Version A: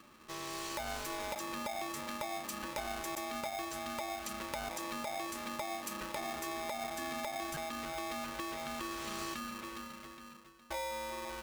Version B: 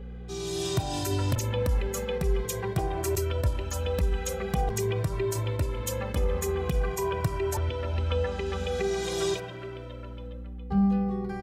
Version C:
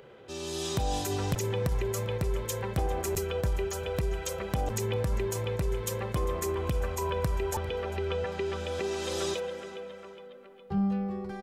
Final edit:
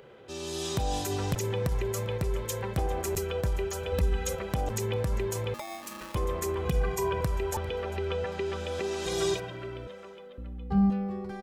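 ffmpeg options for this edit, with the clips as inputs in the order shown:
-filter_complex "[1:a]asplit=4[a][b][c][d];[2:a]asplit=6[e][f][g][h][i][j];[e]atrim=end=3.922[k];[a]atrim=start=3.918:end=4.352[l];[f]atrim=start=4.348:end=5.542[m];[0:a]atrim=start=5.538:end=6.152[n];[g]atrim=start=6.148:end=6.652[o];[b]atrim=start=6.648:end=7.212[p];[h]atrim=start=7.208:end=9.062[q];[c]atrim=start=9.058:end=9.872[r];[i]atrim=start=9.868:end=10.382[s];[d]atrim=start=10.378:end=10.902[t];[j]atrim=start=10.898[u];[k][l]acrossfade=d=0.004:c1=hsin:c2=hsin[v];[v][m]acrossfade=d=0.004:c1=hsin:c2=hsin[w];[w][n]acrossfade=d=0.004:c1=hsin:c2=hsin[x];[x][o]acrossfade=d=0.004:c1=hsin:c2=hsin[y];[y][p]acrossfade=d=0.004:c1=hsin:c2=hsin[z];[z][q]acrossfade=d=0.004:c1=hsin:c2=hsin[aa];[aa][r]acrossfade=d=0.004:c1=hsin:c2=hsin[ab];[ab][s]acrossfade=d=0.004:c1=hsin:c2=hsin[ac];[ac][t]acrossfade=d=0.004:c1=hsin:c2=hsin[ad];[ad][u]acrossfade=d=0.004:c1=hsin:c2=hsin"

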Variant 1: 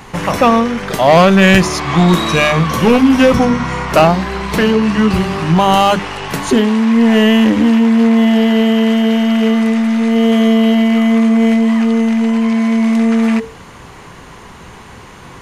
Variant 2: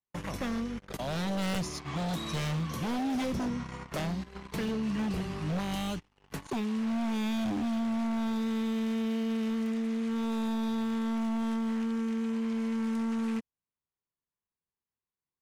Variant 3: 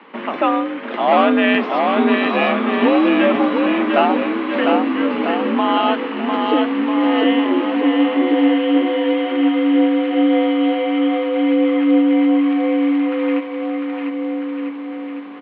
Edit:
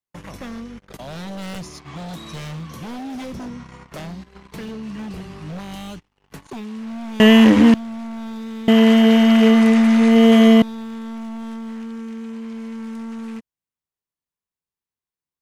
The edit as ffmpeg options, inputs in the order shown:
-filter_complex "[0:a]asplit=2[a][b];[1:a]asplit=3[c][d][e];[c]atrim=end=7.202[f];[a]atrim=start=7.198:end=7.742[g];[d]atrim=start=7.738:end=8.682[h];[b]atrim=start=8.678:end=10.622[i];[e]atrim=start=10.618[j];[f][g]acrossfade=d=0.004:c1=hsin:c2=hsin[k];[k][h]acrossfade=d=0.004:c1=hsin:c2=hsin[l];[l][i]acrossfade=d=0.004:c1=hsin:c2=hsin[m];[m][j]acrossfade=d=0.004:c1=hsin:c2=hsin"

